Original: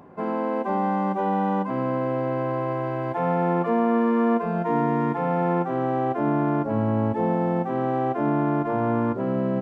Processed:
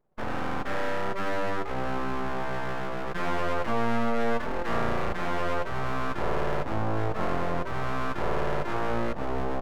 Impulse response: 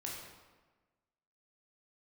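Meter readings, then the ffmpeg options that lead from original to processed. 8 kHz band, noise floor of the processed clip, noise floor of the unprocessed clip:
can't be measured, −32 dBFS, −29 dBFS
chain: -af "anlmdn=25.1,aeval=exprs='abs(val(0))':channel_layout=same,volume=-2dB"

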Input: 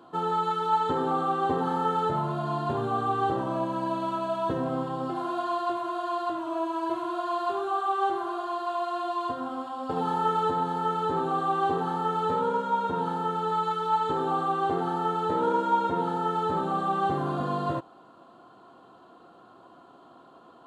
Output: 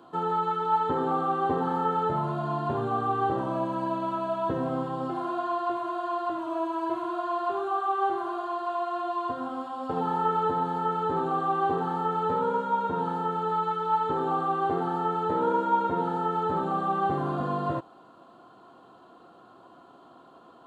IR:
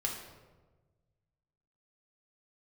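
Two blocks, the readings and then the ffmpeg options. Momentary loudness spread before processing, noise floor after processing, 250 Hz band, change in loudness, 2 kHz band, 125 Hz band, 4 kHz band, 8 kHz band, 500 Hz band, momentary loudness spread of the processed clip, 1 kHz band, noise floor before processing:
5 LU, −53 dBFS, 0.0 dB, 0.0 dB, −0.5 dB, 0.0 dB, −5.0 dB, can't be measured, 0.0 dB, 5 LU, 0.0 dB, −53 dBFS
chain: -filter_complex "[0:a]acrossover=split=2600[link_01][link_02];[link_02]acompressor=threshold=-57dB:ratio=4:attack=1:release=60[link_03];[link_01][link_03]amix=inputs=2:normalize=0"

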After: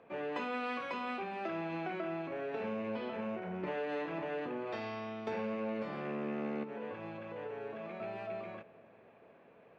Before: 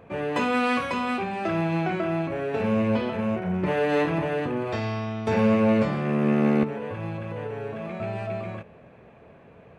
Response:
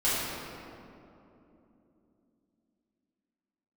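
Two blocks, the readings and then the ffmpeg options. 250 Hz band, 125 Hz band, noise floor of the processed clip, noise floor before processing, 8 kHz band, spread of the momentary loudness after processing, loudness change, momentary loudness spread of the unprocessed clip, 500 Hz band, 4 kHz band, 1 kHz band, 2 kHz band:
−16.0 dB, −20.5 dB, −61 dBFS, −51 dBFS, can't be measured, 6 LU, −13.5 dB, 11 LU, −12.0 dB, −12.5 dB, −11.5 dB, −12.0 dB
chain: -filter_complex "[0:a]acrossover=split=210 5800:gain=0.141 1 0.0794[link_01][link_02][link_03];[link_01][link_02][link_03]amix=inputs=3:normalize=0,acompressor=threshold=-26dB:ratio=5,asplit=2[link_04][link_05];[1:a]atrim=start_sample=2205[link_06];[link_05][link_06]afir=irnorm=-1:irlink=0,volume=-33dB[link_07];[link_04][link_07]amix=inputs=2:normalize=0,volume=-8.5dB"

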